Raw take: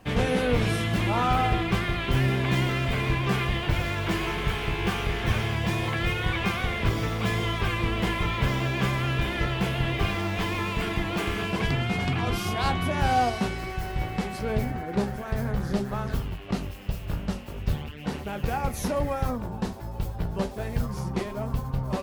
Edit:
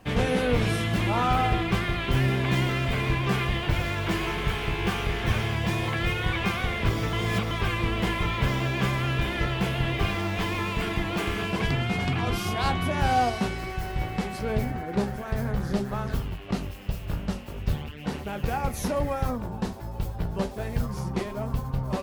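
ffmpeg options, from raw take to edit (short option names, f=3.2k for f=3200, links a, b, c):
-filter_complex "[0:a]asplit=3[a][b][c];[a]atrim=end=7.132[d];[b]atrim=start=7.128:end=7.512,asetpts=PTS-STARTPTS,areverse[e];[c]atrim=start=7.508[f];[d][e]acrossfade=d=0.004:c1=hsin:c2=hsin[g];[g][f]acrossfade=d=0.004:c1=hsin:c2=hsin"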